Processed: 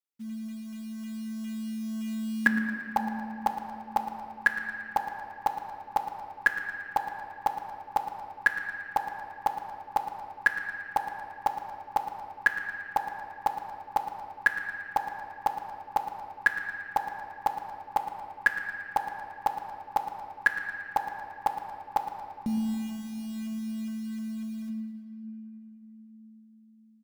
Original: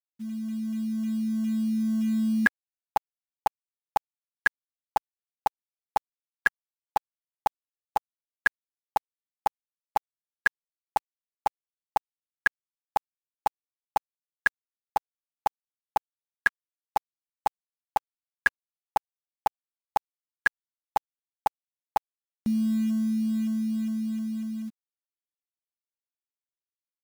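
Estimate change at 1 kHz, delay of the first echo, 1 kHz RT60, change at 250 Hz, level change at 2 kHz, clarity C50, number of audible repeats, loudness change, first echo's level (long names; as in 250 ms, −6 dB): 0.0 dB, 113 ms, 2.7 s, −5.5 dB, 0.0 dB, 4.5 dB, 2, −2.0 dB, −12.5 dB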